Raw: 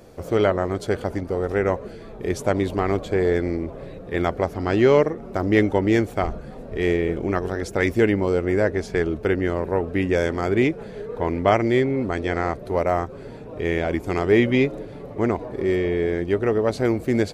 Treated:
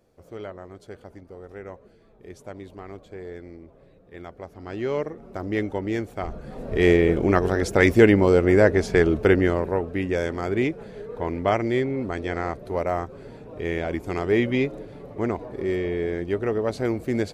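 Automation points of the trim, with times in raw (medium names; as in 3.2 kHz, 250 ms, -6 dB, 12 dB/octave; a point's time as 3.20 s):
4.30 s -17.5 dB
5.17 s -8 dB
6.18 s -8 dB
6.69 s +4 dB
9.36 s +4 dB
9.90 s -4 dB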